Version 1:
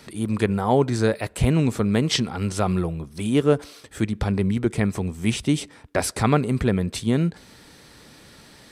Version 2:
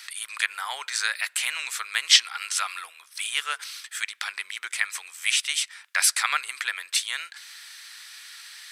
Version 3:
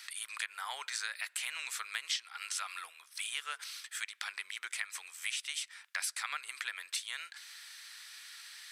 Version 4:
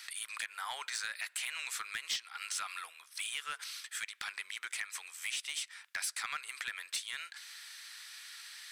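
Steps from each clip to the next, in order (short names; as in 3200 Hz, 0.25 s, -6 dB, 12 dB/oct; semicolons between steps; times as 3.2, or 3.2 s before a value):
HPF 1500 Hz 24 dB/oct; gain +8 dB
compressor 4:1, threshold -28 dBFS, peak gain reduction 15 dB; gain -6.5 dB
soft clip -27.5 dBFS, distortion -15 dB; gain +1 dB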